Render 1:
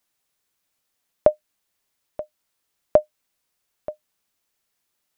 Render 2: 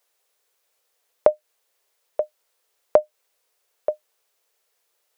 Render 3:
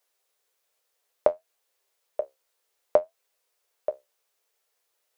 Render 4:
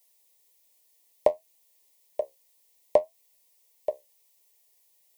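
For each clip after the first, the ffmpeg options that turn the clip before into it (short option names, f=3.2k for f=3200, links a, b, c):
-filter_complex "[0:a]lowshelf=f=330:t=q:w=3:g=-11,asplit=2[a][b];[b]alimiter=limit=-8dB:level=0:latency=1:release=23,volume=-1dB[c];[a][c]amix=inputs=2:normalize=0,acompressor=threshold=-13dB:ratio=2.5,volume=-1.5dB"
-af "flanger=delay=9.5:depth=6.1:regen=58:speed=0.6:shape=sinusoidal"
-filter_complex "[0:a]acrossover=split=800[a][b];[b]crystalizer=i=2:c=0[c];[a][c]amix=inputs=2:normalize=0,asuperstop=centerf=1400:order=20:qfactor=2.2"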